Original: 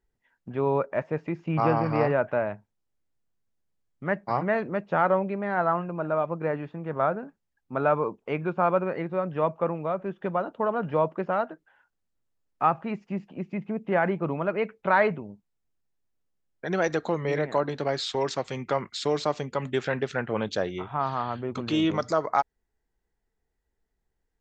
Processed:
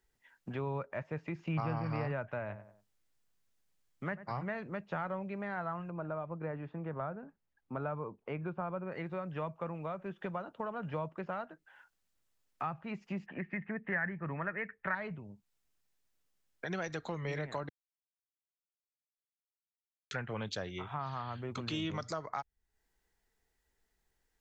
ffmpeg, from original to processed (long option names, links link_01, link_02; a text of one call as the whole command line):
ffmpeg -i in.wav -filter_complex "[0:a]asettb=1/sr,asplit=3[link_01][link_02][link_03];[link_01]atrim=end=2.394[link_04];[link_02]atrim=start=2.39:end=4.4,asetpts=PTS-STARTPTS,afade=type=in:duration=0.004:curve=qsin,afade=type=out:start_time=2.006:duration=0.004:curve=qsin,asplit=2[link_05][link_06];[link_06]adelay=93,lowpass=frequency=1500:poles=1,volume=-14dB,asplit=2[link_07][link_08];[link_08]adelay=93,lowpass=frequency=1500:poles=1,volume=0.31,asplit=2[link_09][link_10];[link_10]adelay=93,lowpass=frequency=1500:poles=1,volume=0.31[link_11];[link_05][link_07][link_09][link_11]amix=inputs=4:normalize=0,atrim=end_sample=88641[link_12];[link_03]atrim=start=4.396[link_13];[link_04][link_12]acrossfade=duration=0.004:curve1=hsin:curve2=qsin[link_14];[link_14][link_13]acrossfade=duration=0.004:curve1=qsin:curve2=hsin,asettb=1/sr,asplit=3[link_15][link_16][link_17];[link_15]atrim=end=5.904[link_18];[link_16]atrim=start=5.9:end=8.92,asetpts=PTS-STARTPTS,afade=type=in:duration=0.004:curve=qsin,afade=type=out:start_time=3.016:duration=0.004:curve=qsin,lowpass=frequency=1100:poles=1[link_19];[link_17]atrim=start=8.916[link_20];[link_18][link_19]acrossfade=duration=0.004:curve1=hsin:curve2=qsin[link_21];[link_21][link_20]acrossfade=duration=0.004:curve1=qsin:curve2=hsin,asettb=1/sr,asplit=3[link_22][link_23][link_24];[link_22]atrim=end=13.264[link_25];[link_23]atrim=start=13.26:end=14.95,asetpts=PTS-STARTPTS,afade=type=in:duration=0.004:curve=qsin,afade=type=out:start_time=1.686:duration=0.004:curve=qsin,lowpass=frequency=1800:width_type=q:width=15[link_26];[link_24]atrim=start=14.946[link_27];[link_25][link_26]acrossfade=duration=0.004:curve1=hsin:curve2=qsin[link_28];[link_28][link_27]acrossfade=duration=0.004:curve1=qsin:curve2=hsin,asplit=3[link_29][link_30][link_31];[link_29]atrim=end=17.69,asetpts=PTS-STARTPTS,afade=type=out:start_time=17.686:duration=0.004:curve=hsin[link_32];[link_30]atrim=start=17.69:end=20.11,asetpts=PTS-STARTPTS,volume=0[link_33];[link_31]atrim=start=20.11,asetpts=PTS-STARTPTS,afade=type=in:duration=0.004:curve=hsin[link_34];[link_32][link_33][link_34]concat=n=3:v=0:a=1,tiltshelf=frequency=970:gain=-5,acrossover=split=150[link_35][link_36];[link_36]acompressor=threshold=-44dB:ratio=3[link_37];[link_35][link_37]amix=inputs=2:normalize=0,volume=2.5dB" out.wav